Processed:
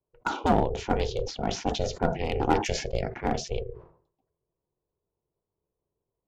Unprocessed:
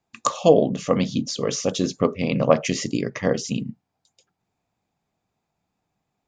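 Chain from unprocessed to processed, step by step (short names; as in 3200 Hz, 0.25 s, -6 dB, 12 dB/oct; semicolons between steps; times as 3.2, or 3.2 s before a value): low-pass opened by the level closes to 490 Hz, open at -15.5 dBFS; one-sided clip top -16 dBFS; ring modulator 250 Hz; sustainer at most 110 dB/s; gain -2.5 dB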